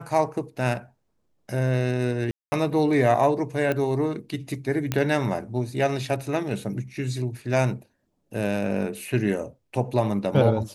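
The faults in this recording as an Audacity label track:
2.310000	2.520000	drop-out 210 ms
3.720000	3.720000	click −14 dBFS
4.920000	4.920000	click −10 dBFS

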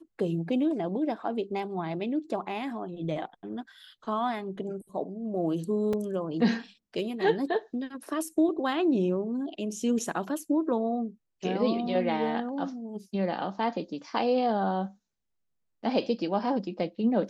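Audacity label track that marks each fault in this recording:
5.930000	5.930000	drop-out 3.6 ms

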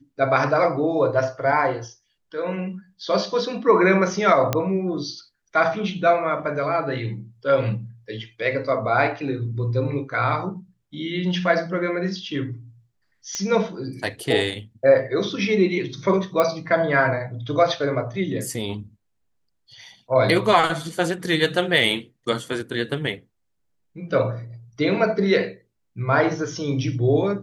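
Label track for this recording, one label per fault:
4.530000	4.530000	click −6 dBFS
13.350000	13.350000	click −13 dBFS
16.400000	16.400000	click −8 dBFS

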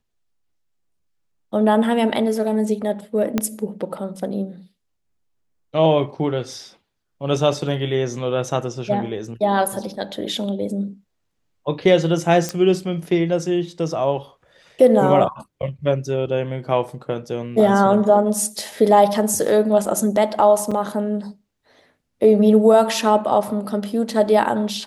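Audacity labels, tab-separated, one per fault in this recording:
3.380000	3.380000	click −6 dBFS
12.490000	12.490000	click −9 dBFS
20.710000	20.720000	drop-out 5.3 ms

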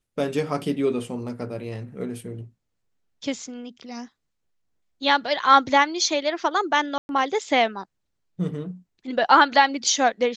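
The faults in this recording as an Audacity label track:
6.980000	7.090000	drop-out 111 ms

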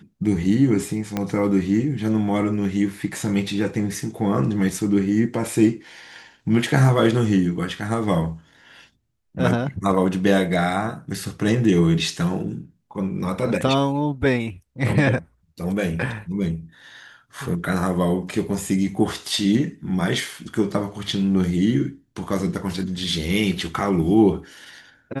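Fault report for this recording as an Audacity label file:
1.170000	1.170000	click −10 dBFS

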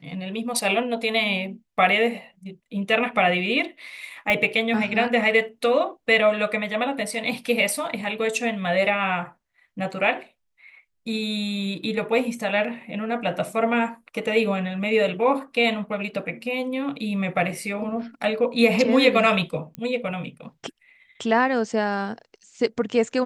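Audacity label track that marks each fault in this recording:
4.300000	4.300000	click −9 dBFS
19.750000	19.750000	click −19 dBFS

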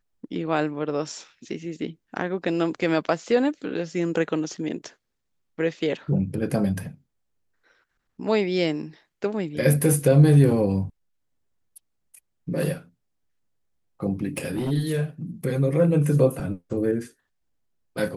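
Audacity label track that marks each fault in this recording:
14.370000	14.720000	clipping −22.5 dBFS

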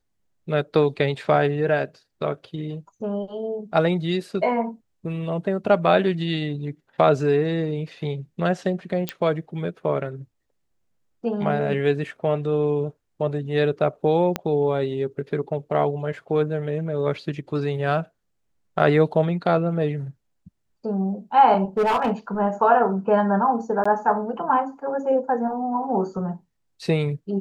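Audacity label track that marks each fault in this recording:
9.090000	9.090000	click −9 dBFS
14.360000	14.360000	click −9 dBFS
21.770000	22.110000	clipping −16.5 dBFS
23.840000	23.860000	drop-out 15 ms

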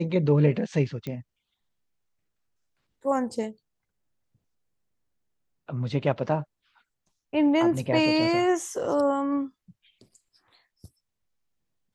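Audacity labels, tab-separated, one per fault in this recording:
1.070000	1.070000	click −21 dBFS

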